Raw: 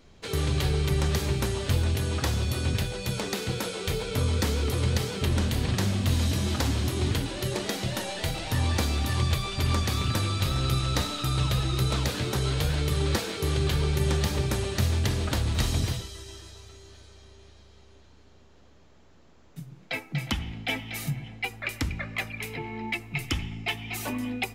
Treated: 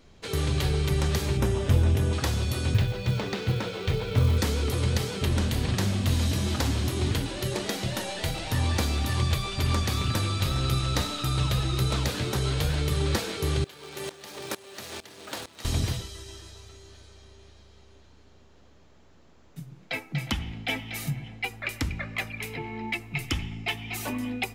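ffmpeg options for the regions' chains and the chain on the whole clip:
-filter_complex "[0:a]asettb=1/sr,asplit=3[a][b][c];[a]atrim=end=1.374[d];[b]atrim=start=1.37:end=2.13,asetpts=PTS-STARTPTS,afade=t=in:d=0.004:c=qsin,afade=t=out:st=0.756:d=0.004:c=qsin,tiltshelf=f=1.2k:g=4,bandreject=f=4.3k:w=6.8[e];[c]atrim=start=2.126[f];[d][e]acrossfade=d=0.004:c1=hsin:c2=qsin[g];[g][f]acrossfade=d=0.004:c1=qsin:c2=hsin,asettb=1/sr,asplit=3[h][i][j];[h]atrim=end=2.744[k];[i]atrim=start=2.74:end=4.38,asetpts=PTS-STARTPTS,afade=t=in:d=0.004:c=qsin,afade=t=out:st=1.636:d=0.004:c=qsin,lowpass=4k,equalizer=f=110:w=2.3:g=9,acrusher=bits=7:mode=log:mix=0:aa=0.000001[l];[j]atrim=start=4.376[m];[k][l]acrossfade=d=0.004:c1=hsin:c2=qsin[n];[n][m]acrossfade=d=0.004:c1=qsin:c2=hsin,asettb=1/sr,asplit=3[o][p][q];[o]atrim=end=13.644[r];[p]atrim=start=13.64:end=15.65,asetpts=PTS-STARTPTS,afade=t=in:d=0.004:c=qsin,afade=t=out:st=2.006:d=0.004:c=qsin,aeval=exprs='val(0)+0.5*0.02*sgn(val(0))':c=same,highpass=370,aeval=exprs='val(0)*pow(10,-20*if(lt(mod(-2.2*n/s,1),2*abs(-2.2)/1000),1-mod(-2.2*n/s,1)/(2*abs(-2.2)/1000),(mod(-2.2*n/s,1)-2*abs(-2.2)/1000)/(1-2*abs(-2.2)/1000))/20)':c=same[s];[q]atrim=start=15.646[t];[r][s]acrossfade=d=0.004:c1=hsin:c2=qsin[u];[u][t]acrossfade=d=0.004:c1=qsin:c2=hsin"

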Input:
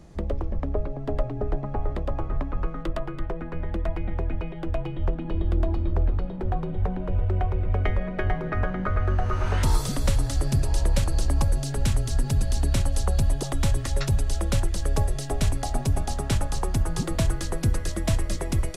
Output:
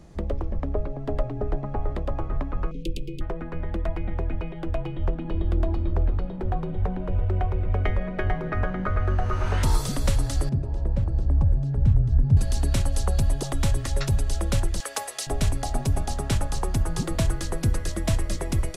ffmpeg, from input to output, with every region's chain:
-filter_complex "[0:a]asettb=1/sr,asplit=3[a][b][c];[a]atrim=end=2.714[d];[b]atrim=start=2.71:end=3.21,asetpts=PTS-STARTPTS,afade=t=in:d=0.004:c=qsin,afade=t=out:st=0.496:d=0.004:c=qsin,asuperstop=centerf=1100:order=20:qfactor=0.61,highshelf=f=3k:g=8.5[e];[c]atrim=start=3.206[f];[d][e]acrossfade=d=0.004:c1=hsin:c2=qsin[g];[g][f]acrossfade=d=0.004:c1=qsin:c2=hsin,asettb=1/sr,asplit=3[h][i][j];[h]atrim=end=10.494[k];[i]atrim=start=10.49:end=12.37,asetpts=PTS-STARTPTS,afade=t=in:d=0.004:c=qsin,afade=t=out:st=1.876:d=0.004:c=qsin,asubboost=boost=10:cutoff=130,bandpass=f=210:t=q:w=0.6[l];[j]atrim=start=12.366[m];[k][l]acrossfade=d=0.004:c1=hsin:c2=qsin[n];[n][m]acrossfade=d=0.004:c1=qsin:c2=hsin,asettb=1/sr,asplit=3[o][p][q];[o]atrim=end=14.804[r];[p]atrim=start=14.8:end=15.27,asetpts=PTS-STARTPTS,afade=t=in:d=0.004:c=qsin,afade=t=out:st=0.466:d=0.004:c=qsin,highpass=940,acontrast=55,aecho=1:1:4:0.32,atrim=end_sample=20727[s];[q]atrim=start=15.266[t];[r][s]acrossfade=d=0.004:c1=hsin:c2=qsin[u];[u][t]acrossfade=d=0.004:c1=qsin:c2=hsin"

